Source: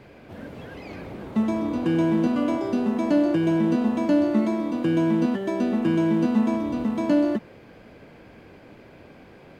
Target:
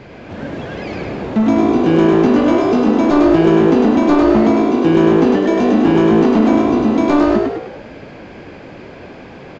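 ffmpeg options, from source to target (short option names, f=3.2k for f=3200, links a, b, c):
-filter_complex "[0:a]aresample=16000,aeval=exprs='0.335*sin(PI/2*2.24*val(0)/0.335)':c=same,aresample=44100,asplit=7[a][b][c][d][e][f][g];[b]adelay=102,afreqshift=54,volume=-3dB[h];[c]adelay=204,afreqshift=108,volume=-9.6dB[i];[d]adelay=306,afreqshift=162,volume=-16.1dB[j];[e]adelay=408,afreqshift=216,volume=-22.7dB[k];[f]adelay=510,afreqshift=270,volume=-29.2dB[l];[g]adelay=612,afreqshift=324,volume=-35.8dB[m];[a][h][i][j][k][l][m]amix=inputs=7:normalize=0"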